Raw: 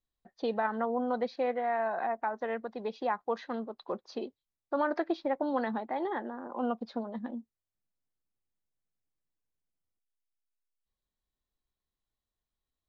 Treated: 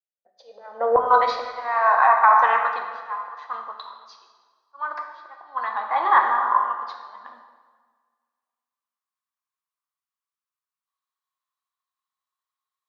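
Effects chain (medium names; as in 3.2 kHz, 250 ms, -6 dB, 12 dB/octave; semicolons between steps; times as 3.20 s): fade-in on the opening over 0.88 s; slow attack 712 ms; resonant high-pass 550 Hz, resonance Q 6.8, from 0.96 s 1.1 kHz; plate-style reverb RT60 2.2 s, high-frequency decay 0.75×, DRR 1.5 dB; loudness maximiser +17 dB; three bands expanded up and down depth 40%; trim -5 dB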